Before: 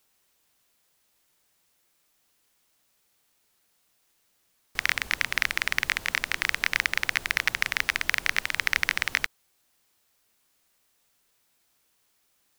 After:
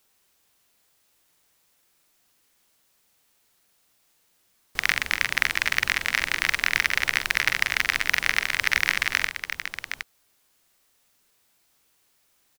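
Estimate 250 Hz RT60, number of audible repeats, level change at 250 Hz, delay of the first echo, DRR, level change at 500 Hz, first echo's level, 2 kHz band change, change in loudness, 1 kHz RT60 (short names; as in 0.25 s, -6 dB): none, 3, +3.0 dB, 45 ms, none, +3.0 dB, -7.5 dB, +3.0 dB, +2.5 dB, none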